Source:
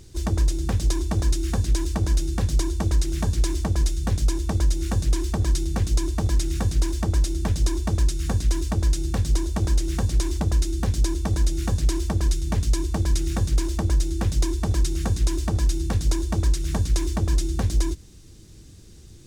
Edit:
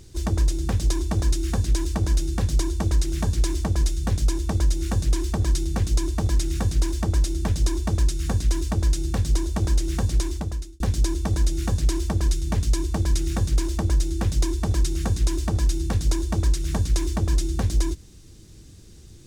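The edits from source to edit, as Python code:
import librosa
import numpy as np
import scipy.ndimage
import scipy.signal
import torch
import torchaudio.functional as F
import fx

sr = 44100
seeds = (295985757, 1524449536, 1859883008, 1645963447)

y = fx.edit(x, sr, fx.fade_out_span(start_s=10.16, length_s=0.64), tone=tone)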